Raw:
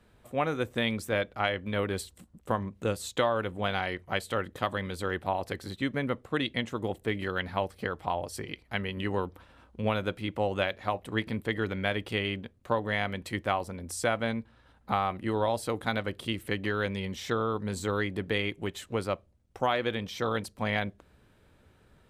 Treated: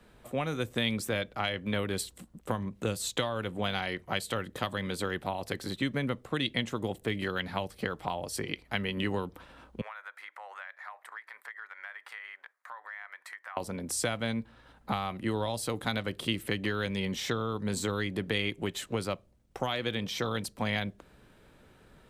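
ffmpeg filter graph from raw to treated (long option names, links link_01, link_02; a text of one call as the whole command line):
ffmpeg -i in.wav -filter_complex "[0:a]asettb=1/sr,asplit=3[link_01][link_02][link_03];[link_01]atrim=end=9.814[link_04];[link_02]atrim=start=9.81:end=13.57,asetpts=PTS-STARTPTS,afade=type=in:duration=0.004:curve=qsin,afade=type=out:start_time=3.756:duration=0.004:curve=qsin,highpass=frequency=930:width=0.5412,highpass=frequency=930:width=1.3066,highshelf=frequency=2300:width_type=q:width=3:gain=-7,acompressor=threshold=-47dB:ratio=4:attack=3.2:release=140:knee=1:detection=peak[link_05];[link_03]atrim=start=13.566[link_06];[link_04][link_05]acrossfade=duration=0.004:curve1=hsin:curve2=qsin[link_07];[link_07][link_06]acrossfade=duration=0.004:curve1=qsin:curve2=hsin,equalizer=frequency=83:width=2.6:gain=-11,acrossover=split=180|3000[link_08][link_09][link_10];[link_09]acompressor=threshold=-35dB:ratio=6[link_11];[link_08][link_11][link_10]amix=inputs=3:normalize=0,volume=4.5dB" out.wav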